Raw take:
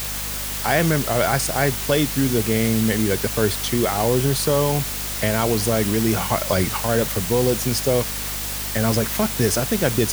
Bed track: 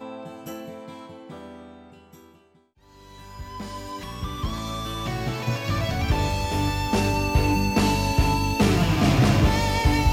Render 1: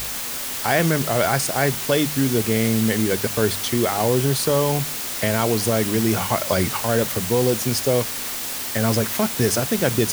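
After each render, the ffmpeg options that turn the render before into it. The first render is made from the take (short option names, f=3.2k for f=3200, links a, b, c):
-af "bandreject=f=50:t=h:w=4,bandreject=f=100:t=h:w=4,bandreject=f=150:t=h:w=4,bandreject=f=200:t=h:w=4"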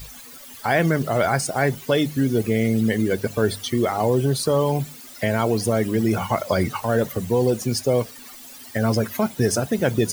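-af "afftdn=nr=17:nf=-28"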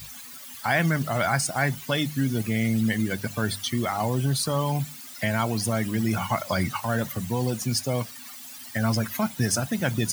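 -af "highpass=91,equalizer=f=430:t=o:w=0.98:g=-14"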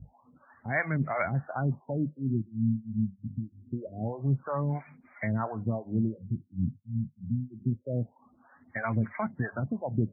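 -filter_complex "[0:a]acrossover=split=480[a][b];[a]aeval=exprs='val(0)*(1-1/2+1/2*cos(2*PI*3*n/s))':c=same[c];[b]aeval=exprs='val(0)*(1-1/2-1/2*cos(2*PI*3*n/s))':c=same[d];[c][d]amix=inputs=2:normalize=0,afftfilt=real='re*lt(b*sr/1024,240*pow(2500/240,0.5+0.5*sin(2*PI*0.25*pts/sr)))':imag='im*lt(b*sr/1024,240*pow(2500/240,0.5+0.5*sin(2*PI*0.25*pts/sr)))':win_size=1024:overlap=0.75"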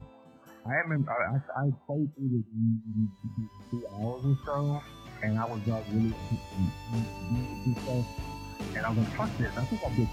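-filter_complex "[1:a]volume=-18dB[a];[0:a][a]amix=inputs=2:normalize=0"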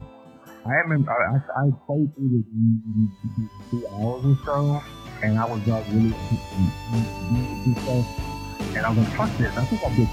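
-af "volume=8dB"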